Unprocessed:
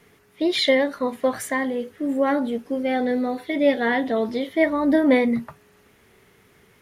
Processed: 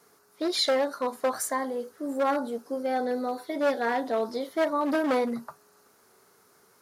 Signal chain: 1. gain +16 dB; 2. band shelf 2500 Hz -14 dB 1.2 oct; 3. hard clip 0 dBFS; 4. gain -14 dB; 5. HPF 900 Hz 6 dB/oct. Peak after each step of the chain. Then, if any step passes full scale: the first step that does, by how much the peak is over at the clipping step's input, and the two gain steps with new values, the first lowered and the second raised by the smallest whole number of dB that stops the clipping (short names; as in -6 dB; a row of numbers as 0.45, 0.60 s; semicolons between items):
+9.5, +8.5, 0.0, -14.0, -14.0 dBFS; step 1, 8.5 dB; step 1 +7 dB, step 4 -5 dB